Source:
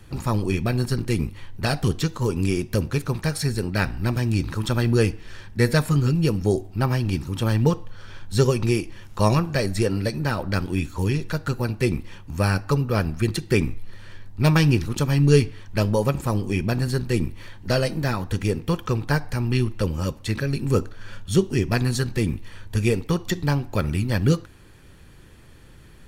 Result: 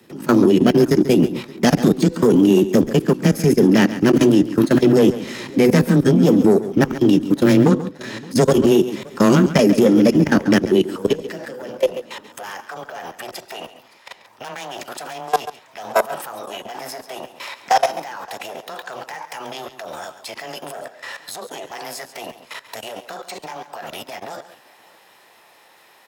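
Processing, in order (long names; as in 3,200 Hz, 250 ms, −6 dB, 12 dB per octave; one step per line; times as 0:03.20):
in parallel at +2 dB: downward compressor 16 to 1, threshold −31 dBFS, peak gain reduction 21.5 dB
on the sum: hum removal 122.1 Hz, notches 4
soft clipping −16.5 dBFS, distortion −11 dB
high-pass filter sweep 220 Hz → 640 Hz, 0:10.43–0:12.44
dynamic equaliser 180 Hz, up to +8 dB, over −38 dBFS, Q 1.6
output level in coarse steps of 20 dB
frequency shifter +13 Hz
single-tap delay 138 ms −13.5 dB
formants moved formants +3 semitones
feedback echo with a swinging delay time 568 ms, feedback 42%, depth 120 cents, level −23.5 dB
level +8 dB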